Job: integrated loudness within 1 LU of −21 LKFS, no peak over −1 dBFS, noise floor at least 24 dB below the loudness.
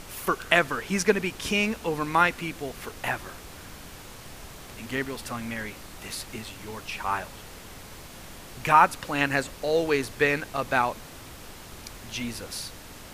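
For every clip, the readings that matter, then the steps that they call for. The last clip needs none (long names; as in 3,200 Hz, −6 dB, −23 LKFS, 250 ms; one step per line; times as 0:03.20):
background noise floor −44 dBFS; target noise floor −51 dBFS; integrated loudness −26.5 LKFS; sample peak −4.5 dBFS; target loudness −21.0 LKFS
→ noise reduction from a noise print 7 dB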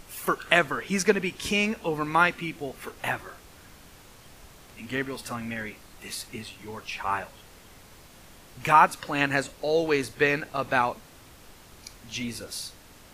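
background noise floor −51 dBFS; integrated loudness −26.5 LKFS; sample peak −4.5 dBFS; target loudness −21.0 LKFS
→ level +5.5 dB
brickwall limiter −1 dBFS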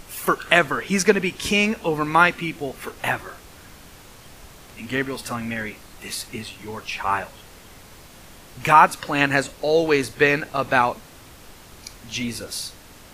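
integrated loudness −21.5 LKFS; sample peak −1.0 dBFS; background noise floor −46 dBFS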